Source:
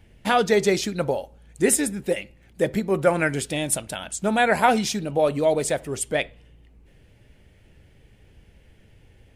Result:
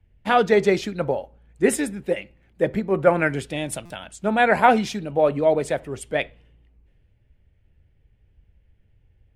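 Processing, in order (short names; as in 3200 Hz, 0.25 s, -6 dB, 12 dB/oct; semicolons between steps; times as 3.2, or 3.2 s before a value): tone controls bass -1 dB, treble -12 dB; stuck buffer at 3.85, samples 256, times 8; three-band expander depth 40%; gain +1 dB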